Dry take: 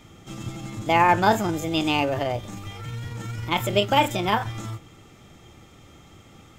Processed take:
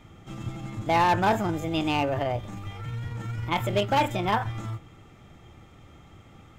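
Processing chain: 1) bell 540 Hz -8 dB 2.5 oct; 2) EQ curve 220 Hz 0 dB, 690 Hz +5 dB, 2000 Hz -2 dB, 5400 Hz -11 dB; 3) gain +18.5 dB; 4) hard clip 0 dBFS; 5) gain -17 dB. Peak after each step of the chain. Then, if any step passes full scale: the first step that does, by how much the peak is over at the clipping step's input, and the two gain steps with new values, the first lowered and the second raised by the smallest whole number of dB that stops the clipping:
-9.5, -9.0, +9.5, 0.0, -17.0 dBFS; step 3, 9.5 dB; step 3 +8.5 dB, step 5 -7 dB

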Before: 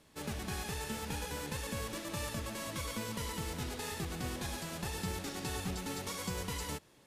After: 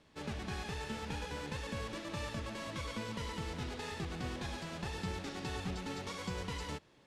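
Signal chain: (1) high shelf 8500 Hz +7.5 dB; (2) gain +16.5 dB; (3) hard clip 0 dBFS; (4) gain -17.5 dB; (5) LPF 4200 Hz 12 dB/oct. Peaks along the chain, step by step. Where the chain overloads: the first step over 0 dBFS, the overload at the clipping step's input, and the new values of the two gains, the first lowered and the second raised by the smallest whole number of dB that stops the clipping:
-22.0, -5.5, -5.5, -23.0, -25.5 dBFS; no overload

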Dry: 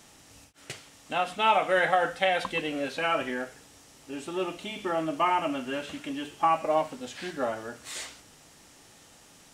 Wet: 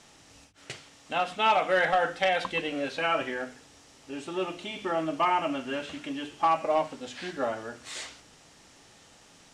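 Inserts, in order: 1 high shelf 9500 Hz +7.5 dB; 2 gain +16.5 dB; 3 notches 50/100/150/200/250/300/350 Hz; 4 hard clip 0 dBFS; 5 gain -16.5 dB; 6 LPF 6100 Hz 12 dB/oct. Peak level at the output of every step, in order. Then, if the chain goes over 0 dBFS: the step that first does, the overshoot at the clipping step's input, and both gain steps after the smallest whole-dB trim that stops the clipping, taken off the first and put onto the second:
-8.5, +8.0, +8.0, 0.0, -16.5, -16.0 dBFS; step 2, 8.0 dB; step 2 +8.5 dB, step 5 -8.5 dB

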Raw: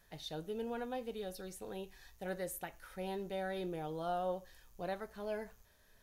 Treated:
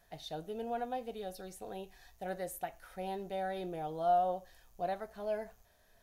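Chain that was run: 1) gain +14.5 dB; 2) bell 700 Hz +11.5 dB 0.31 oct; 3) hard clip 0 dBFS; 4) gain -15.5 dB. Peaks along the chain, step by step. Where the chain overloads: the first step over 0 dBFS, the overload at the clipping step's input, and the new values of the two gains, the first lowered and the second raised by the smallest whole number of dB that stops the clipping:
-12.5, -5.0, -5.0, -20.5 dBFS; no overload

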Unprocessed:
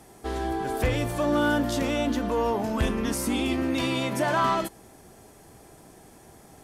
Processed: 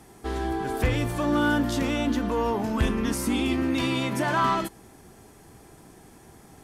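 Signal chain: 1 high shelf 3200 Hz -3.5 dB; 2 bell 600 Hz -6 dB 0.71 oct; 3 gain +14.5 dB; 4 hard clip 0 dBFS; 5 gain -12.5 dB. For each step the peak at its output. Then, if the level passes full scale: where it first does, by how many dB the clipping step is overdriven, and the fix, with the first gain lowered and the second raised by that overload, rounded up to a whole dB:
-16.5, -16.0, -1.5, -1.5, -14.0 dBFS; no overload

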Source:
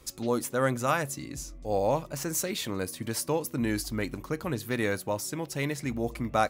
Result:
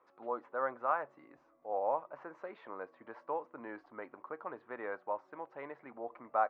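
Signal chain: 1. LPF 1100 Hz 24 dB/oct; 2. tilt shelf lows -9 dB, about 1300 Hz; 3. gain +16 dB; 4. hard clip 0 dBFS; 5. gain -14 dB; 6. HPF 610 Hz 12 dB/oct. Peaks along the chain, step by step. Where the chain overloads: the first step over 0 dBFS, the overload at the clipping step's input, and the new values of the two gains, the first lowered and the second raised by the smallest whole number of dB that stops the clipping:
-14.0, -18.0, -2.0, -2.0, -16.0, -17.0 dBFS; no overload

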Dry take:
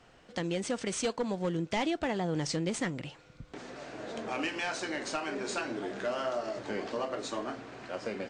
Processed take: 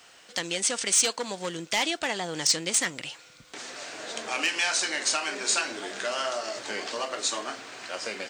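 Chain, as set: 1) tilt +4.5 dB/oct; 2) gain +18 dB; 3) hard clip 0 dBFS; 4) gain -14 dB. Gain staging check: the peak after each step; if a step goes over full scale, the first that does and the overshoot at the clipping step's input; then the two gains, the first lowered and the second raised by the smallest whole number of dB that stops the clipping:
-12.0, +6.0, 0.0, -14.0 dBFS; step 2, 6.0 dB; step 2 +12 dB, step 4 -8 dB

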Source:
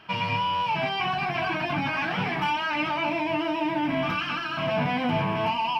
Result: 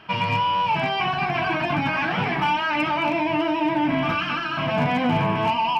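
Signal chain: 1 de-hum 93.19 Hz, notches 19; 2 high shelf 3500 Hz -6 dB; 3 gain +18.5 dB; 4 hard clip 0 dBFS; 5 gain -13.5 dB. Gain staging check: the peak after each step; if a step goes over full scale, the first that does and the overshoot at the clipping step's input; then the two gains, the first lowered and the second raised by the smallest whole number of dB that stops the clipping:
-13.5, -14.0, +4.5, 0.0, -13.5 dBFS; step 3, 4.5 dB; step 3 +13.5 dB, step 5 -8.5 dB

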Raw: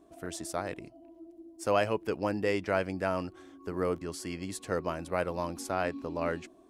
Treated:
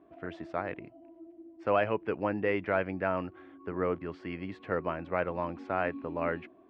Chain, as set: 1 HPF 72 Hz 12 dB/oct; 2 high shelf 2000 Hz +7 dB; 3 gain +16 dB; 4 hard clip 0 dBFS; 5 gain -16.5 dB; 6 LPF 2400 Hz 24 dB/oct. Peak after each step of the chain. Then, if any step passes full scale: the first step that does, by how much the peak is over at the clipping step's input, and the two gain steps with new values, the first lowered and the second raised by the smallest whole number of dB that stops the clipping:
-13.0, -10.5, +5.5, 0.0, -16.5, -15.5 dBFS; step 3, 5.5 dB; step 3 +10 dB, step 5 -10.5 dB

